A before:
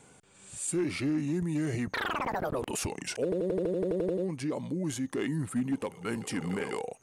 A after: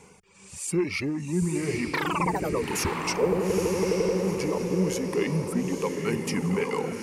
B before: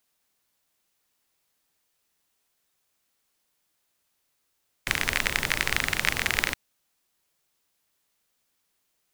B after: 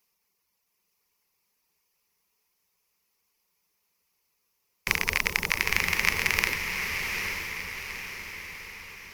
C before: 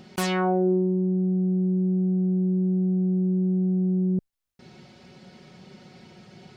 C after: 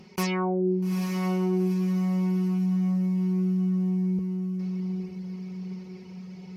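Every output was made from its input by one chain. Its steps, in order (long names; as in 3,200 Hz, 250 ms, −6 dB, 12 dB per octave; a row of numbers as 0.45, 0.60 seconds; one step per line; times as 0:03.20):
reverb reduction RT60 0.98 s
EQ curve with evenly spaced ripples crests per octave 0.82, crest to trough 9 dB
on a send: feedback delay with all-pass diffusion 874 ms, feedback 50%, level −4.5 dB
on the sum: loudness normalisation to −27 LKFS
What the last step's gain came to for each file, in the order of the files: +4.5, −0.5, −3.5 decibels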